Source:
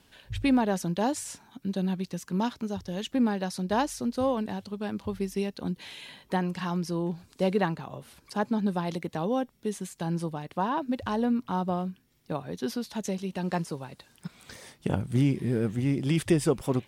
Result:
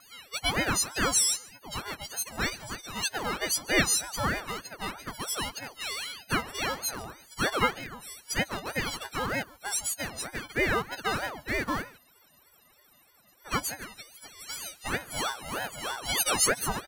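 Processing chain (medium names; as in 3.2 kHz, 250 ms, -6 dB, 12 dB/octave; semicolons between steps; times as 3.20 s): partials quantised in pitch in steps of 6 st; high-pass 450 Hz 12 dB/octave; in parallel at -10.5 dB: bit crusher 5-bit; on the sum: wow and flutter 140 cents; on a send: delay 145 ms -22.5 dB; on the sum: spectral freeze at 12.00 s, 1.45 s; ring modulator with a swept carrier 800 Hz, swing 55%, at 3.2 Hz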